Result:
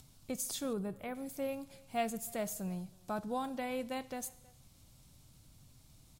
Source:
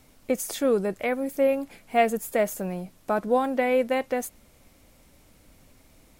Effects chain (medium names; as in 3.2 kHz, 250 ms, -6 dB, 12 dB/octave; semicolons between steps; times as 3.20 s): graphic EQ 125/250/500/2000/4000/8000 Hz +11/-4/-9/-9/+5/+3 dB; speakerphone echo 320 ms, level -24 dB; Schroeder reverb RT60 0.92 s, combs from 27 ms, DRR 17.5 dB; upward compressor, threshold -47 dBFS; 0.73–1.15 s: peaking EQ 5.6 kHz -13.5 dB 1.4 oct; trim -8 dB